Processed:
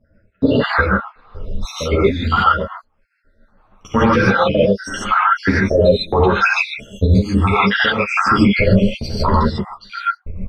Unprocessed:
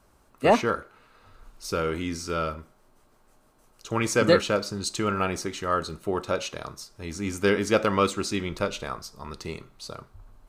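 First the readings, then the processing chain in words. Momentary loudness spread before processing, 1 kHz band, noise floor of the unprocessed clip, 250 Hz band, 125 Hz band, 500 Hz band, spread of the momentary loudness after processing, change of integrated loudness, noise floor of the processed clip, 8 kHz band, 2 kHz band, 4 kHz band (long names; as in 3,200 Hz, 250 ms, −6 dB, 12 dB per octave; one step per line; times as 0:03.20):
17 LU, +12.5 dB, −61 dBFS, +12.5 dB, +16.0 dB, +8.5 dB, 9 LU, +10.5 dB, −60 dBFS, −2.5 dB, +14.0 dB, +9.0 dB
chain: time-frequency cells dropped at random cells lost 79%
noise gate −54 dBFS, range −19 dB
parametric band 350 Hz −10 dB 0.32 octaves
notch filter 6,800 Hz, Q 5
harmonic and percussive parts rebalanced harmonic −4 dB
downward compressor 6 to 1, threshold −35 dBFS, peak gain reduction 17 dB
gate pattern "x.xxxxxxxxx.x.x." 94 BPM −12 dB
high-frequency loss of the air 320 metres
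reverb whose tail is shaped and stops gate 170 ms rising, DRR −6 dB
boost into a limiter +31 dB
string-ensemble chorus
level −1 dB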